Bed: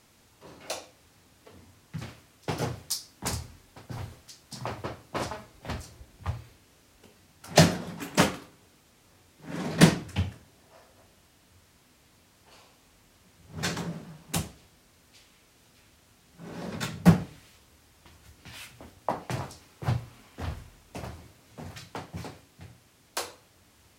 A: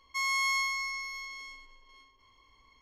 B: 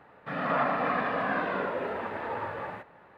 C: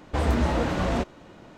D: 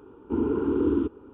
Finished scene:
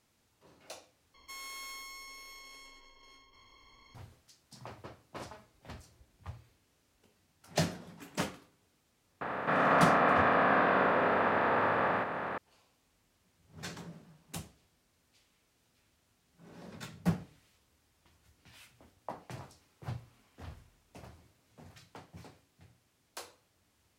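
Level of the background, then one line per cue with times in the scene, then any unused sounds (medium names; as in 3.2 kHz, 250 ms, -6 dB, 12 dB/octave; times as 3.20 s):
bed -12.5 dB
1.14 s: replace with A -13.5 dB + spectrum-flattening compressor 2:1
9.21 s: add B -2 dB + spectral levelling over time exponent 0.4
not used: C, D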